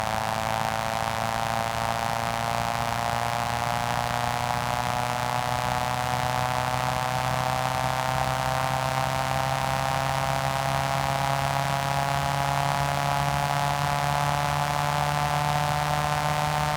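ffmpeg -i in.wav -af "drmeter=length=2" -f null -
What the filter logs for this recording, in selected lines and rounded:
Channel 1: DR: 13.3
Overall DR: 13.3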